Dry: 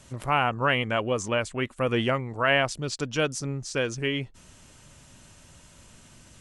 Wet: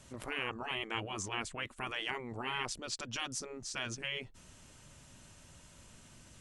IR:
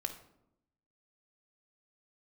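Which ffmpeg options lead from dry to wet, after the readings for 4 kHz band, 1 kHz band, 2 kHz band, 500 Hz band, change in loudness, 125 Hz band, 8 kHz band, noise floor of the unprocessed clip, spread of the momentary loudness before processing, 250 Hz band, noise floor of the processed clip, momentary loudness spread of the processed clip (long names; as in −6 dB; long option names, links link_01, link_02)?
−7.0 dB, −13.5 dB, −11.5 dB, −17.5 dB, −12.0 dB, −17.0 dB, −5.0 dB, −53 dBFS, 8 LU, −15.0 dB, −58 dBFS, 20 LU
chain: -af "afftfilt=real='re*lt(hypot(re,im),0.141)':imag='im*lt(hypot(re,im),0.141)':win_size=1024:overlap=0.75,volume=-5dB"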